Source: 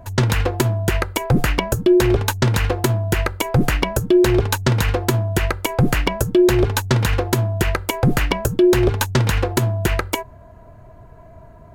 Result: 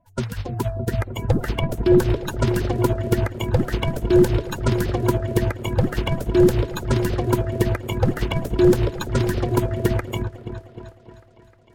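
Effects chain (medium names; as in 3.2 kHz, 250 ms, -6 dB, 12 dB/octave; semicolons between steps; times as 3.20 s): coarse spectral quantiser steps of 30 dB; delay with an opening low-pass 308 ms, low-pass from 200 Hz, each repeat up 1 oct, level 0 dB; upward expansion 2.5:1, over -26 dBFS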